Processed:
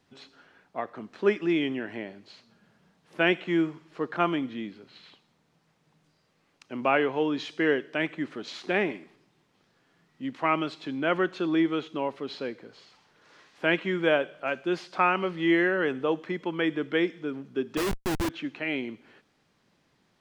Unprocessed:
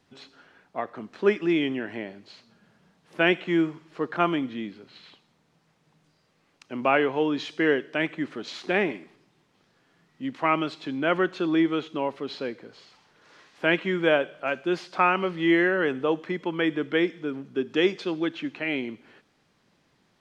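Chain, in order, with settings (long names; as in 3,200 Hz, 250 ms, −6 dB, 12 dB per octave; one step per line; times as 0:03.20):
0:17.77–0:18.29: comparator with hysteresis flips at −28 dBFS
level −2 dB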